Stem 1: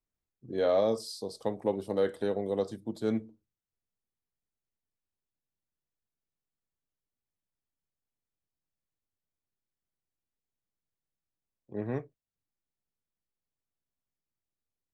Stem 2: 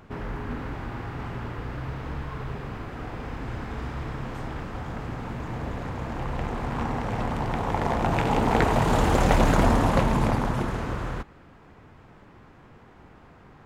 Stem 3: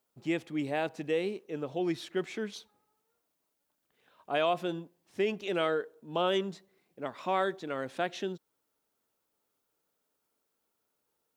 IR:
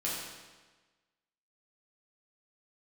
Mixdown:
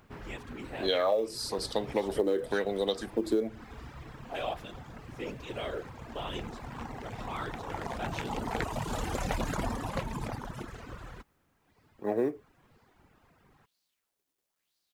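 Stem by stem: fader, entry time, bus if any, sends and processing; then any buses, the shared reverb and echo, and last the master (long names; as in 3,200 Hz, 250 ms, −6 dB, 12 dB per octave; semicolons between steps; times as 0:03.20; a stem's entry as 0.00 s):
+3.0 dB, 0.30 s, no send, high-pass filter 200 Hz 12 dB per octave; auto-filter bell 1 Hz 320–4,600 Hz +17 dB
−10.0 dB, 0.00 s, no send, reverb reduction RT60 1.6 s
−11.0 dB, 0.00 s, no send, comb filter 4.4 ms; random phases in short frames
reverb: not used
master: high-shelf EQ 2,600 Hz +7 dB; log-companded quantiser 8 bits; downward compressor 12 to 1, threshold −24 dBFS, peak gain reduction 17.5 dB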